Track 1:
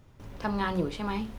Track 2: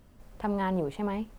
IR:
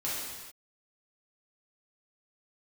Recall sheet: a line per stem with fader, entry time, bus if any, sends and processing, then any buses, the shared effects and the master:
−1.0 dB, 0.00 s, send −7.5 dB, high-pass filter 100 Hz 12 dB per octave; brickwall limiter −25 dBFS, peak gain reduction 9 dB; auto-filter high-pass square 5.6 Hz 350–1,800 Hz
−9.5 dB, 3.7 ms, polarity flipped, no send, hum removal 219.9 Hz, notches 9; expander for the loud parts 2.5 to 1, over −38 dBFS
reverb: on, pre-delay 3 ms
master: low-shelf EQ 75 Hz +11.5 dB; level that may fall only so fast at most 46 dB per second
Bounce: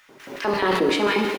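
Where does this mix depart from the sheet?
stem 1 −1.0 dB → +9.5 dB
master: missing low-shelf EQ 75 Hz +11.5 dB

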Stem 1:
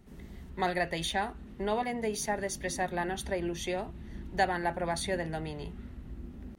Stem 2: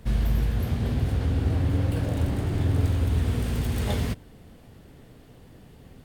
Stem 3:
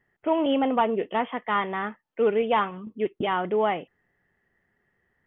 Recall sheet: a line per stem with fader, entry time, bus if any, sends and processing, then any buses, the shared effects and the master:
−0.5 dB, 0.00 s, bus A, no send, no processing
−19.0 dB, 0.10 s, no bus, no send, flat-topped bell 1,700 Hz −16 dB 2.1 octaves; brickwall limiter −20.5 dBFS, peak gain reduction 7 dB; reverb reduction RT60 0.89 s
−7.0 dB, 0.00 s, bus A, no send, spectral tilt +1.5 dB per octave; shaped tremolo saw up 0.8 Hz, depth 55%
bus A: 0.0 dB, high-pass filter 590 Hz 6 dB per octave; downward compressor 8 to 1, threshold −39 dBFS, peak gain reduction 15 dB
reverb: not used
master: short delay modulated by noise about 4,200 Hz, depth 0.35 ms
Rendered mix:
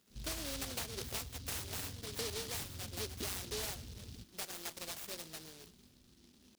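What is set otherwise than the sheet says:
stem 1 −0.5 dB → −8.5 dB
stem 3 −7.0 dB → +2.0 dB

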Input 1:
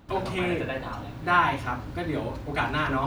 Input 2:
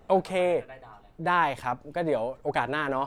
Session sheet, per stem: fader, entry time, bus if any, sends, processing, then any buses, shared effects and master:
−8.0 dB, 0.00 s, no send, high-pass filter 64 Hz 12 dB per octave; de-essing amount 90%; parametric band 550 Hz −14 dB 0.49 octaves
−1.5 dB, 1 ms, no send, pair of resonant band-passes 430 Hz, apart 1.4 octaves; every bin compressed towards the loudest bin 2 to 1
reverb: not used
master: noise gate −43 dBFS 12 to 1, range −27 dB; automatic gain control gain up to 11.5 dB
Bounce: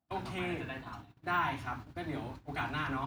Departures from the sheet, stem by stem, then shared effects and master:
stem 2 −1.5 dB → −12.0 dB
master: missing automatic gain control gain up to 11.5 dB

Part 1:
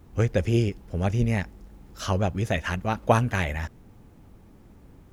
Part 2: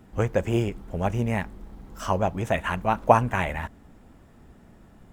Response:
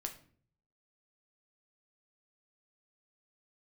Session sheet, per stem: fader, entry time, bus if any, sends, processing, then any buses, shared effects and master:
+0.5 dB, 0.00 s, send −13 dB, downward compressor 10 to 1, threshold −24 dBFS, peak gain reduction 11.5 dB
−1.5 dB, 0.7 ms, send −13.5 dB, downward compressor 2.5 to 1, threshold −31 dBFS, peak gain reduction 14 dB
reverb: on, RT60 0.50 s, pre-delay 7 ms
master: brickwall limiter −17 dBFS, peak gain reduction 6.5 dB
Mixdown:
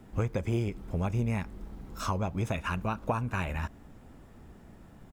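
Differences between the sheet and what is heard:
stem 1 +0.5 dB → −9.0 dB
reverb return −9.0 dB

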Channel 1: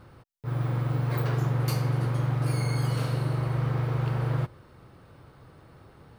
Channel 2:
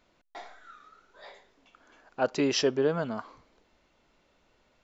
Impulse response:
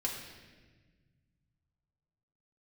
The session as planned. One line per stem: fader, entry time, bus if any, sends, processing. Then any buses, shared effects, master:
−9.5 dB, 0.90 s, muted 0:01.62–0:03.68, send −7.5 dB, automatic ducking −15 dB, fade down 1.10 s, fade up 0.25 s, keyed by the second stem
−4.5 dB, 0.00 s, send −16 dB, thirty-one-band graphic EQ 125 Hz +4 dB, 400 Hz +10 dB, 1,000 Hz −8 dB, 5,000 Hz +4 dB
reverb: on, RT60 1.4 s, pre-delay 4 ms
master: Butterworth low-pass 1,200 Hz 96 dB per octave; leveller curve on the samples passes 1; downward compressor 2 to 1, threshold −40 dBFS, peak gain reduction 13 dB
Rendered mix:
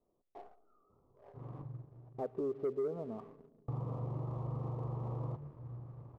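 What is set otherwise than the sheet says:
stem 1: send −7.5 dB → −13.5 dB
stem 2 −4.5 dB → −11.0 dB

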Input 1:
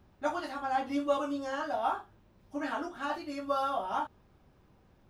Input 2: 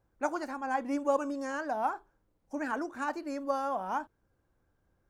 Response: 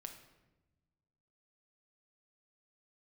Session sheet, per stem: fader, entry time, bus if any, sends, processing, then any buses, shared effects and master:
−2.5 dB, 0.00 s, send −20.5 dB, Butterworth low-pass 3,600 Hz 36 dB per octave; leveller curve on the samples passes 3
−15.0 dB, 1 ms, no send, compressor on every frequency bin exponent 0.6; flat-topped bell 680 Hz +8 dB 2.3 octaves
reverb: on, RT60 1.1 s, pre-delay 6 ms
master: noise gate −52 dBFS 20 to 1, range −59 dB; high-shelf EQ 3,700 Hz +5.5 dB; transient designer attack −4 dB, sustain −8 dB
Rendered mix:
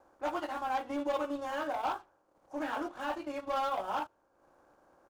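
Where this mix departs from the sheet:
stem 1 −2.5 dB → −12.5 dB
master: missing noise gate −52 dBFS 20 to 1, range −59 dB

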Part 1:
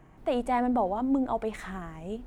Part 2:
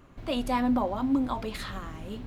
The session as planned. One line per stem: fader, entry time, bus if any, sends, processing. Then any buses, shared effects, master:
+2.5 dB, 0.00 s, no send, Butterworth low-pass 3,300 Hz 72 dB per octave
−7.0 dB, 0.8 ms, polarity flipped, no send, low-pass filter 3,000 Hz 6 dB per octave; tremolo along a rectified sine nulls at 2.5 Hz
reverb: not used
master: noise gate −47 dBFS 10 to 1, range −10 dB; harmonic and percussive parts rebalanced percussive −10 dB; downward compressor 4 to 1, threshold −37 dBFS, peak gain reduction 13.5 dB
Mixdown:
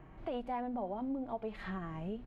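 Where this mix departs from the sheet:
stem 2: missing tremolo along a rectified sine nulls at 2.5 Hz
master: missing noise gate −47 dBFS 10 to 1, range −10 dB

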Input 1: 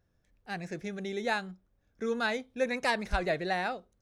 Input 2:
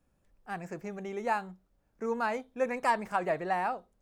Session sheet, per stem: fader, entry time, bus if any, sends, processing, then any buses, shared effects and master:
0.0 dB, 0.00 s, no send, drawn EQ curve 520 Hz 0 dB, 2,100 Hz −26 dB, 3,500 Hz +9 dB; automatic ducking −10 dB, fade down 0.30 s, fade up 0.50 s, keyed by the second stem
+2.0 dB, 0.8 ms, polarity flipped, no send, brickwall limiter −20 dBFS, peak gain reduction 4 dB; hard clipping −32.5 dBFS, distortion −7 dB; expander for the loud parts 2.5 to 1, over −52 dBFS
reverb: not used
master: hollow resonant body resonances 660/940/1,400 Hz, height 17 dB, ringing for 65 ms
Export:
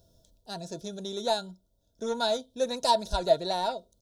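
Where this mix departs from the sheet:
stem 1 0.0 dB → +9.5 dB
stem 2 +2.0 dB → −5.5 dB

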